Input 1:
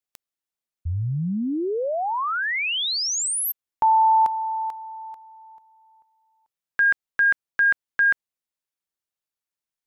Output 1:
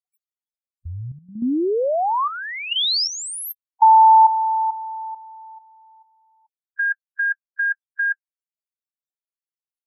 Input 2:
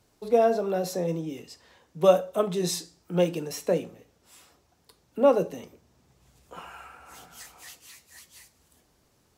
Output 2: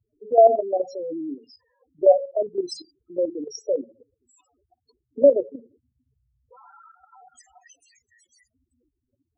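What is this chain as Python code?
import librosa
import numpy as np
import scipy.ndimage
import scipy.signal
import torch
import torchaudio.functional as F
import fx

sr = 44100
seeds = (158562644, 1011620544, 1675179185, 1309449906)

y = fx.spec_topn(x, sr, count=4)
y = fx.curve_eq(y, sr, hz=(120.0, 170.0, 250.0, 440.0, 760.0, 1600.0, 3900.0), db=(0, -22, 10, 5, 14, 0, 11))
y = fx.level_steps(y, sr, step_db=10)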